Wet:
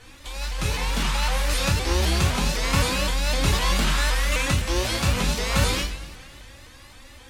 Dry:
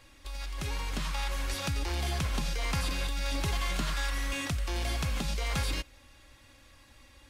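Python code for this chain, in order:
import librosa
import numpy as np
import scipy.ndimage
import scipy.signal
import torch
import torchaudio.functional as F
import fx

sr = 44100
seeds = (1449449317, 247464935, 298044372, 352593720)

y = fx.rev_double_slope(x, sr, seeds[0], early_s=0.47, late_s=2.3, knee_db=-18, drr_db=-4.0)
y = fx.vibrato_shape(y, sr, shape='saw_up', rate_hz=3.9, depth_cents=160.0)
y = y * librosa.db_to_amplitude(5.5)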